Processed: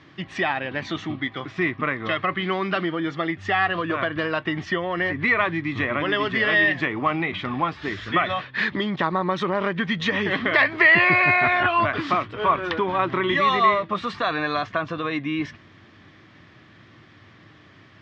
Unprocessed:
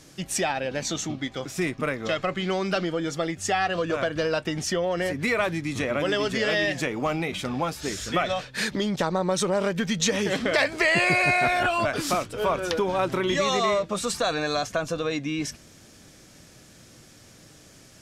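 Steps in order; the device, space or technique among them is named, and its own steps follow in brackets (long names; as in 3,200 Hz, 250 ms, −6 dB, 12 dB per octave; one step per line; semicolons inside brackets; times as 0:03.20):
guitar cabinet (loudspeaker in its box 81–3,600 Hz, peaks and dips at 100 Hz +8 dB, 330 Hz +4 dB, 510 Hz −6 dB, 1,100 Hz +10 dB, 1,900 Hz +9 dB, 3,300 Hz +3 dB)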